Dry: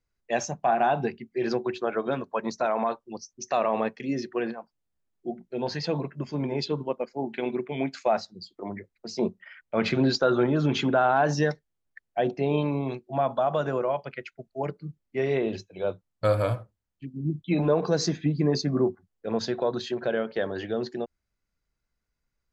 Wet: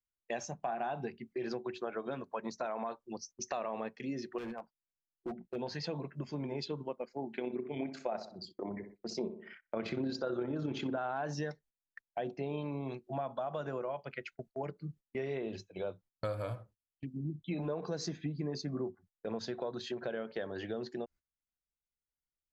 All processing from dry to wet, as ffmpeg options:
ffmpeg -i in.wav -filter_complex "[0:a]asettb=1/sr,asplit=3[link_01][link_02][link_03];[link_01]atrim=end=4.384[link_04];[link_02]atrim=start=4.38:end=5.56,asetpts=PTS-STARTPTS,afade=type=in:duration=0.004:curve=qsin,afade=type=out:start_time=1.176:duration=0.004:curve=qsin,lowpass=3200,asoftclip=type=hard:threshold=-30dB[link_05];[link_03]atrim=start=5.556[link_06];[link_04][link_05]acrossfade=duration=0.004:curve1=hsin:curve2=qsin[link_07];[link_07][link_06]acrossfade=duration=0.004:curve1=qsin:curve2=hsin,asettb=1/sr,asplit=3[link_08][link_09][link_10];[link_08]atrim=end=7.334[link_11];[link_09]atrim=start=7.33:end=10.98,asetpts=PTS-STARTPTS,afade=type=in:duration=0.004:curve=qsin,afade=type=out:start_time=3.646:duration=0.004:curve=qsin,equalizer=frequency=340:width=0.79:gain=5,tremolo=f=34:d=0.4,asplit=2[link_12][link_13];[link_13]adelay=64,lowpass=frequency=1600:poles=1,volume=-10.5dB,asplit=2[link_14][link_15];[link_15]adelay=64,lowpass=frequency=1600:poles=1,volume=0.39,asplit=2[link_16][link_17];[link_17]adelay=64,lowpass=frequency=1600:poles=1,volume=0.39,asplit=2[link_18][link_19];[link_19]adelay=64,lowpass=frequency=1600:poles=1,volume=0.39[link_20];[link_12][link_14][link_16][link_18][link_20]amix=inputs=5:normalize=0,atrim=end_sample=160965[link_21];[link_10]atrim=start=10.976[link_22];[link_11][link_21]acrossfade=duration=0.004:curve1=hsin:curve2=qsin[link_23];[link_23][link_22]acrossfade=duration=0.004:curve1=qsin:curve2=hsin,agate=range=-19dB:threshold=-48dB:ratio=16:detection=peak,acompressor=threshold=-37dB:ratio=3,volume=-1dB" out.wav

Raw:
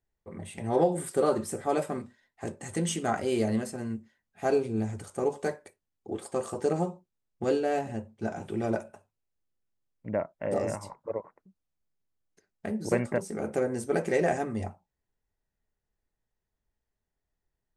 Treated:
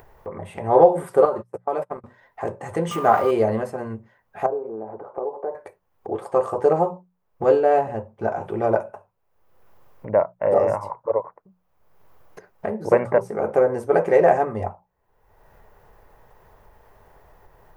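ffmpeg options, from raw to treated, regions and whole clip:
ffmpeg -i in.wav -filter_complex "[0:a]asettb=1/sr,asplit=3[link_01][link_02][link_03];[link_01]atrim=end=1.254[link_04];[link_02]atrim=start=1.25:end=2.04,asetpts=PTS-STARTPTS,afade=type=in:duration=0.004:curve=qsin,afade=type=out:start_time=0.786:duration=0.004:curve=qsin,agate=range=-37dB:threshold=-32dB:ratio=16:release=100:detection=peak,acompressor=threshold=-33dB:ratio=3:attack=3.2:release=140:knee=1:detection=peak[link_05];[link_03]atrim=start=2.036[link_06];[link_04][link_05]acrossfade=duration=0.004:curve1=hsin:curve2=qsin[link_07];[link_07][link_06]acrossfade=duration=0.004:curve1=qsin:curve2=hsin,asettb=1/sr,asplit=3[link_08][link_09][link_10];[link_08]atrim=end=2.914[link_11];[link_09]atrim=start=2.91:end=3.31,asetpts=PTS-STARTPTS,afade=type=in:duration=0.004:curve=qsin,afade=type=out:start_time=0.396:duration=0.004:curve=qsin,aeval=exprs='val(0)+0.5*0.0178*sgn(val(0))':channel_layout=same,highpass=110,aeval=exprs='val(0)+0.01*sin(2*PI*1200*n/s)':channel_layout=same[link_12];[link_10]atrim=start=3.306[link_13];[link_11][link_12]acrossfade=duration=0.004:curve1=hsin:curve2=qsin[link_14];[link_14][link_13]acrossfade=duration=0.004:curve1=qsin:curve2=hsin,asettb=1/sr,asplit=3[link_15][link_16][link_17];[link_15]atrim=end=4.464[link_18];[link_16]atrim=start=4.46:end=5.55,asetpts=PTS-STARTPTS,afade=type=in:duration=0.004:curve=qsin,afade=type=out:start_time=1.086:duration=0.004:curve=qsin,asuperpass=centerf=520:order=4:qfactor=0.73,acompressor=threshold=-36dB:ratio=3:attack=3.2:release=140:knee=1:detection=peak[link_19];[link_17]atrim=start=5.546[link_20];[link_18][link_19]acrossfade=duration=0.004:curve1=hsin:curve2=qsin[link_21];[link_21][link_20]acrossfade=duration=0.004:curve1=qsin:curve2=hsin,equalizer=frequency=125:width_type=o:width=1:gain=3,equalizer=frequency=250:width_type=o:width=1:gain=-6,equalizer=frequency=500:width_type=o:width=1:gain=8,equalizer=frequency=1000:width_type=o:width=1:gain=11,equalizer=frequency=4000:width_type=o:width=1:gain=-6,equalizer=frequency=8000:width_type=o:width=1:gain=-12,acompressor=mode=upward:threshold=-32dB:ratio=2.5,bandreject=frequency=60:width_type=h:width=6,bandreject=frequency=120:width_type=h:width=6,bandreject=frequency=180:width_type=h:width=6,volume=3dB" out.wav

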